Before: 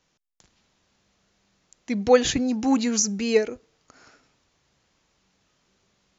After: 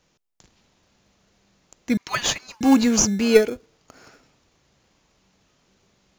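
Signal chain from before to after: 1.97–2.61 s: steep high-pass 940 Hz 72 dB/octave; in parallel at -8 dB: sample-and-hold 23×; on the sum: trim +3 dB

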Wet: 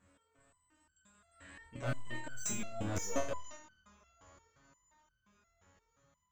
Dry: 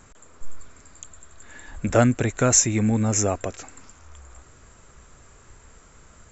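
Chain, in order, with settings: Doppler pass-by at 2.78 s, 22 m/s, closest 5.4 m; high-pass 65 Hz 12 dB/octave; treble shelf 2.8 kHz -10.5 dB; reverse; compression 4:1, threshold -35 dBFS, peak gain reduction 14.5 dB; reverse; hard clipper -35.5 dBFS, distortion -9 dB; graphic EQ with 31 bands 400 Hz -8 dB, 800 Hz -4 dB, 3.15 kHz +5 dB; flutter echo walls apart 4.3 m, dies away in 0.52 s; on a send at -10 dB: reverberation RT60 0.45 s, pre-delay 17 ms; on the sum: resonator arpeggio 5.7 Hz 93–1500 Hz; trim +16 dB

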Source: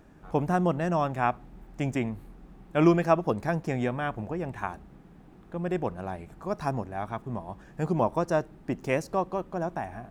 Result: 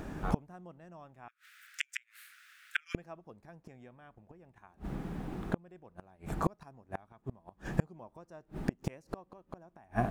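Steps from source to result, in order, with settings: 1.28–2.95 s: steep high-pass 1.4 kHz 72 dB/octave; inverted gate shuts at -27 dBFS, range -38 dB; trim +12.5 dB

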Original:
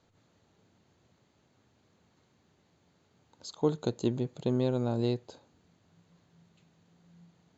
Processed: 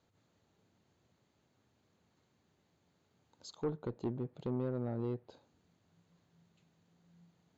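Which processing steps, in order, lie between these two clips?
one-sided clip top -23.5 dBFS; low-pass that closes with the level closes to 1.6 kHz, closed at -30 dBFS; trim -6.5 dB

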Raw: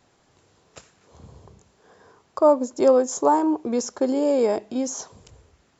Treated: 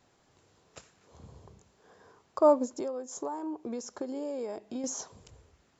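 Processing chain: 2.65–4.84 s: compression 6:1, threshold -29 dBFS, peak gain reduction 16 dB; trim -5 dB

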